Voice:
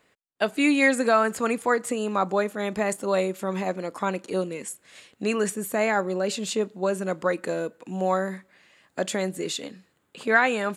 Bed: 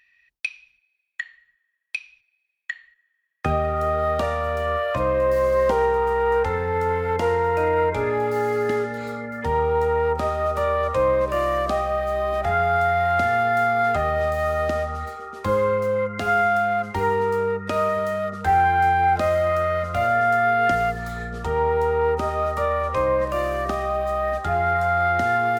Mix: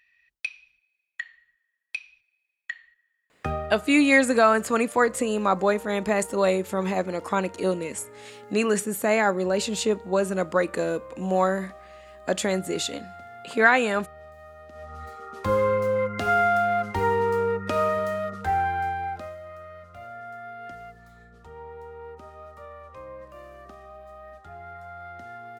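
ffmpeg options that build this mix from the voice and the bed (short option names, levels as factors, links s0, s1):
-filter_complex "[0:a]adelay=3300,volume=1.26[s0];[1:a]volume=8.41,afade=t=out:st=3.34:d=0.51:silence=0.1,afade=t=in:st=14.72:d=0.81:silence=0.0794328,afade=t=out:st=17.85:d=1.52:silence=0.112202[s1];[s0][s1]amix=inputs=2:normalize=0"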